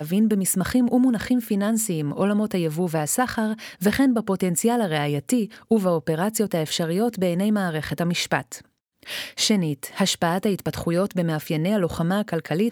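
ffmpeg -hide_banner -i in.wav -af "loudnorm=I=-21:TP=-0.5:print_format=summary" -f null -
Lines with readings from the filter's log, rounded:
Input Integrated:    -23.1 LUFS
Input True Peak:      -6.2 dBTP
Input LRA:             1.9 LU
Input Threshold:     -33.2 LUFS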